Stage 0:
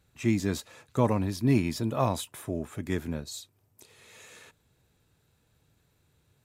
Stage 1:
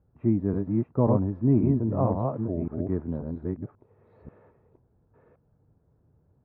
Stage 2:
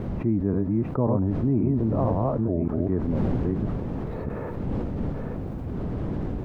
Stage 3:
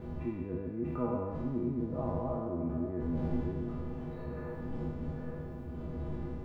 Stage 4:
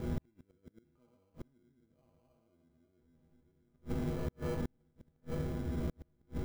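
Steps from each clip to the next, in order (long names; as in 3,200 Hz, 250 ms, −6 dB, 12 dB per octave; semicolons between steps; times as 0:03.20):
delay that plays each chunk backwards 536 ms, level −2.5 dB; Bessel low-pass filter 710 Hz, order 4; level +2.5 dB
wind on the microphone 230 Hz −38 dBFS; envelope flattener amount 70%; level −3 dB
peak hold with a decay on every bin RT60 1.94 s; stiff-string resonator 73 Hz, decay 0.24 s, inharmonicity 0.03; level −5.5 dB
gate with flip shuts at −29 dBFS, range −41 dB; in parallel at −6 dB: sample-rate reduction 1,800 Hz, jitter 0%; on the sum: level +1.5 dB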